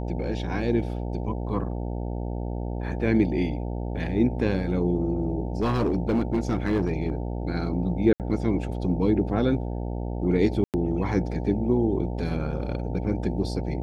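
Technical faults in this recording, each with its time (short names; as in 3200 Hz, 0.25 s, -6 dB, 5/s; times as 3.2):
buzz 60 Hz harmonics 15 -30 dBFS
5.62–7.1 clipped -18.5 dBFS
8.13–8.2 gap 68 ms
10.64–10.74 gap 98 ms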